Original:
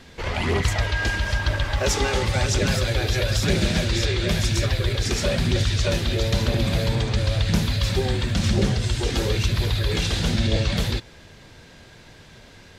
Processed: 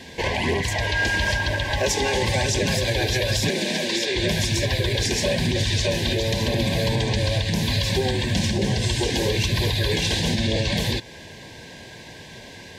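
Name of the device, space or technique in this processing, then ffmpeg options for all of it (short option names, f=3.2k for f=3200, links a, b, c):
PA system with an anti-feedback notch: -filter_complex "[0:a]highpass=f=140:p=1,asuperstop=centerf=1300:order=20:qfactor=3.1,alimiter=limit=-20dB:level=0:latency=1:release=221,asettb=1/sr,asplit=3[a][b][c];[a]atrim=end=3.494[d];[b]atrim=start=3.49:end=4.16,asetpts=PTS-STARTPTS,afade=t=in:d=0.004:c=qsin,afade=t=out:st=0.666:d=0.004:c=qsin,highpass=f=200:w=0.5412,highpass=f=200:w=1.3066[e];[c]atrim=start=4.156[f];[d][e]acrossfade=d=0.004:c1=hsin:c2=qsin[g];[g][f]acrossfade=d=0.004:c1=qsin:c2=hsin,volume=7.5dB"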